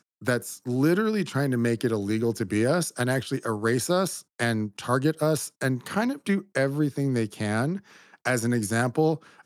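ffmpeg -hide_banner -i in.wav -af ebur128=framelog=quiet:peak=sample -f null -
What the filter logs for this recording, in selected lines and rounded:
Integrated loudness:
  I:         -26.2 LUFS
  Threshold: -36.2 LUFS
Loudness range:
  LRA:         1.5 LU
  Threshold: -46.3 LUFS
  LRA low:   -27.0 LUFS
  LRA high:  -25.6 LUFS
Sample peak:
  Peak:       -9.9 dBFS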